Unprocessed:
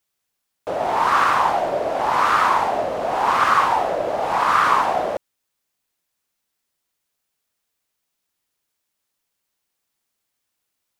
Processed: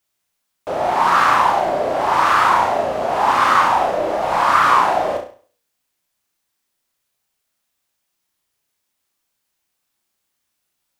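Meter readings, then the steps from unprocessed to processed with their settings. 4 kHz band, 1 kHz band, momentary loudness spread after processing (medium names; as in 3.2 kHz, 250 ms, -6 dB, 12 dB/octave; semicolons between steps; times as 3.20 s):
+3.5 dB, +3.0 dB, 7 LU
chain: band-stop 460 Hz, Q 12; on a send: flutter echo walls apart 5.8 m, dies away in 0.41 s; on the sum: flange 0.43 Hz, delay 7.6 ms, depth 10 ms, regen -77%; trim +6 dB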